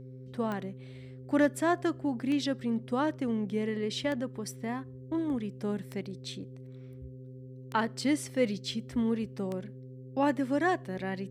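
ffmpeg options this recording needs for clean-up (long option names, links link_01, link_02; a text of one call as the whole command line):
ffmpeg -i in.wav -af "adeclick=threshold=4,bandreject=frequency=128.9:width_type=h:width=4,bandreject=frequency=257.8:width_type=h:width=4,bandreject=frequency=386.7:width_type=h:width=4,bandreject=frequency=515.6:width_type=h:width=4,bandreject=frequency=400:width=30" out.wav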